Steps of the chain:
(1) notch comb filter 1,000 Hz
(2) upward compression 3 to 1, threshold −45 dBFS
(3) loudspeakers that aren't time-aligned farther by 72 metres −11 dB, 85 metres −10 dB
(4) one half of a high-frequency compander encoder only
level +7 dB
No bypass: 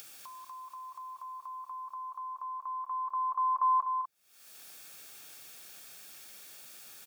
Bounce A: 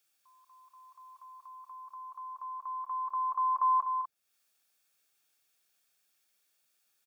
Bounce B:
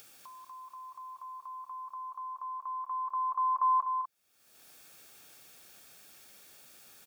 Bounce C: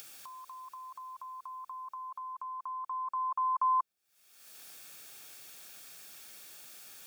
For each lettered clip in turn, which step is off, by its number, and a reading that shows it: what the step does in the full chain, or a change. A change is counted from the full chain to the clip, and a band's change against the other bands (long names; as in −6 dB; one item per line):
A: 2, change in integrated loudness +2.0 LU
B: 4, change in momentary loudness spread +6 LU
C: 3, change in momentary loudness spread −1 LU